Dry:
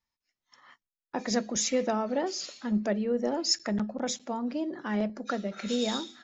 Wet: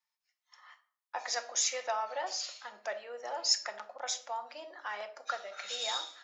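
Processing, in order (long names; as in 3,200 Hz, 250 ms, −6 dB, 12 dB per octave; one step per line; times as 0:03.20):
high-pass filter 710 Hz 24 dB per octave
rectangular room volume 670 cubic metres, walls furnished, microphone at 0.91 metres
level −1 dB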